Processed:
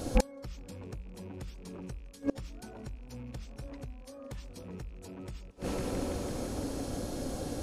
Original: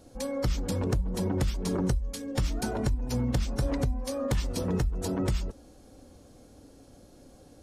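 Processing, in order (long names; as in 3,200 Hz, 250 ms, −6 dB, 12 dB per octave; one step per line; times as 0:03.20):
loose part that buzzes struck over −34 dBFS, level −36 dBFS
tape delay 168 ms, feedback 87%, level −19 dB, low-pass 4,900 Hz
gate with flip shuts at −28 dBFS, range −32 dB
level +16.5 dB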